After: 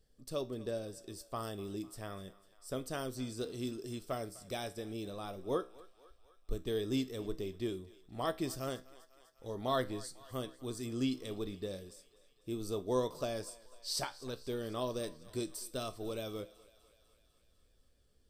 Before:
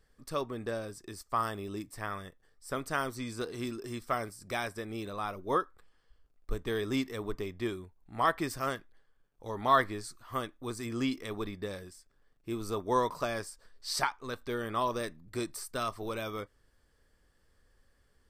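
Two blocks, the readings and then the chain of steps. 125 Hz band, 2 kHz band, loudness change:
−2.0 dB, −12.0 dB, −5.0 dB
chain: flat-topped bell 1,400 Hz −10.5 dB
tuned comb filter 64 Hz, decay 0.34 s, harmonics all, mix 50%
on a send: feedback echo with a high-pass in the loop 249 ms, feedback 69%, high-pass 480 Hz, level −19.5 dB
on the sum: level +1.5 dB

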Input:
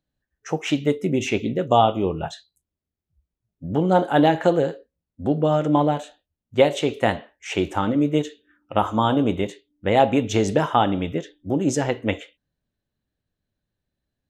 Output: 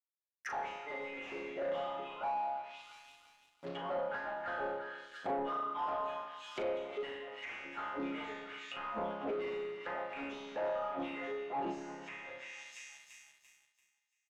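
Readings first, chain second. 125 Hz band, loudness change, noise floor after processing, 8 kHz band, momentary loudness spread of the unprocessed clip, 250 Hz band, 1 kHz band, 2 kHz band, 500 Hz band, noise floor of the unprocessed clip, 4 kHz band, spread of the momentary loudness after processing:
−32.5 dB, −18.0 dB, −82 dBFS, below −20 dB, 12 LU, −23.5 dB, −14.5 dB, −11.0 dB, −17.0 dB, −85 dBFS, −17.5 dB, 11 LU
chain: multi-voice chorus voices 4, 0.77 Hz, delay 24 ms, depth 2.8 ms
dynamic equaliser 460 Hz, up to −8 dB, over −35 dBFS, Q 0.81
auto-filter high-pass saw down 3 Hz 420–4,300 Hz
gate with flip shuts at −20 dBFS, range −24 dB
resonators tuned to a chord C#3 major, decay 0.81 s
leveller curve on the samples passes 5
high-pass filter 170 Hz 12 dB per octave
echo with a time of its own for lows and highs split 1,100 Hz, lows 115 ms, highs 340 ms, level −13.5 dB
speech leveller within 3 dB 0.5 s
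leveller curve on the samples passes 2
treble cut that deepens with the level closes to 1,300 Hz, closed at −40 dBFS
double-tracking delay 40 ms −8 dB
level +3.5 dB

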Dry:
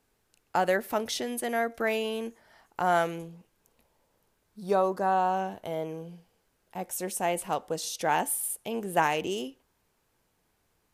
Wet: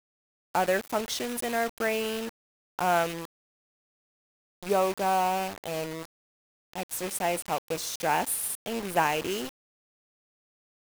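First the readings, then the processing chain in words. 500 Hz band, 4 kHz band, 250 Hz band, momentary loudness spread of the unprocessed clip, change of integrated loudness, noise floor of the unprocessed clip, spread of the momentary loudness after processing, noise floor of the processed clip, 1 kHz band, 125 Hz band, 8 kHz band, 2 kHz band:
0.0 dB, +2.5 dB, 0.0 dB, 15 LU, +0.5 dB, −74 dBFS, 14 LU, below −85 dBFS, 0.0 dB, 0.0 dB, +1.0 dB, +1.0 dB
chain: loose part that buzzes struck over −37 dBFS, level −31 dBFS
bit-depth reduction 6 bits, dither none

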